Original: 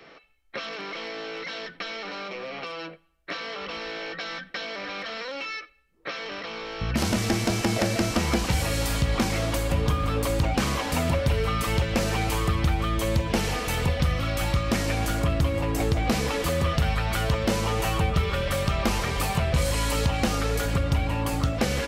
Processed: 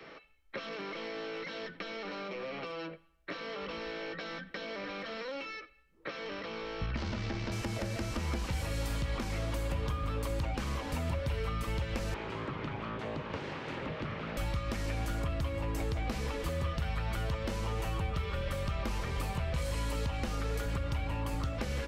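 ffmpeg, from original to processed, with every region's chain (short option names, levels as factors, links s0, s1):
-filter_complex "[0:a]asettb=1/sr,asplit=3[s0][s1][s2];[s0]atrim=end=6.864[s3];[s1]atrim=start=6.86:end=7.52,asetpts=PTS-STARTPTS,afade=t=in:d=0.004:c=qsin,afade=t=out:st=0.656:d=0.004:c=qsin,lowpass=f=5200:w=0.5412,lowpass=f=5200:w=1.3066,tremolo=f=69:d=0.519,asplit=2[s4][s5];[s5]adelay=47,volume=0.266[s6];[s4][s6]amix=inputs=2:normalize=0,atrim=end_sample=29106[s7];[s2]atrim=start=7.516[s8];[s3][s7]acrossfade=d=0.004:c1=hsin:c2=qsin[s9];[s9][s8]acrossfade=d=0.004:c1=qsin:c2=hsin,asettb=1/sr,asplit=3[s10][s11][s12];[s10]atrim=end=12.144[s13];[s11]atrim=start=12.14:end=14.37,asetpts=PTS-STARTPTS,afade=t=in:d=0.004:c=qsin,afade=t=out:st=2.226:d=0.004:c=qsin,aeval=exprs='abs(val(0))':c=same,highpass=110,lowpass=3000[s14];[s12]atrim=start=14.366[s15];[s13][s14]acrossfade=d=0.004:c1=hsin:c2=qsin[s16];[s16][s15]acrossfade=d=0.004:c1=qsin:c2=hsin,highshelf=f=4200:g=-5.5,bandreject=f=720:w=12,acrossover=split=82|590[s17][s18][s19];[s17]acompressor=threshold=0.0178:ratio=4[s20];[s18]acompressor=threshold=0.01:ratio=4[s21];[s19]acompressor=threshold=0.00794:ratio=4[s22];[s20][s21][s22]amix=inputs=3:normalize=0"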